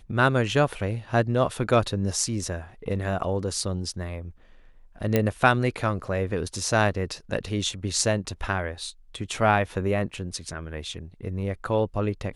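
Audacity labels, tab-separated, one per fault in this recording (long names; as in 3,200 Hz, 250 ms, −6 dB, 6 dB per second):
5.160000	5.160000	click −8 dBFS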